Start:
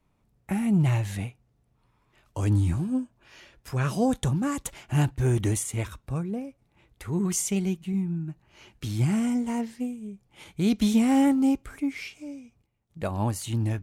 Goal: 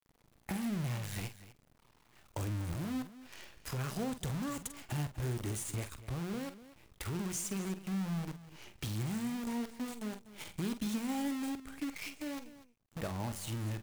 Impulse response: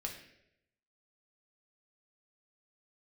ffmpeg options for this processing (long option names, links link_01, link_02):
-filter_complex "[0:a]acompressor=threshold=-42dB:ratio=3,acrusher=bits=8:dc=4:mix=0:aa=0.000001,asplit=2[link_01][link_02];[link_02]aecho=0:1:42|47|245:0.126|0.266|0.168[link_03];[link_01][link_03]amix=inputs=2:normalize=0,volume=1.5dB"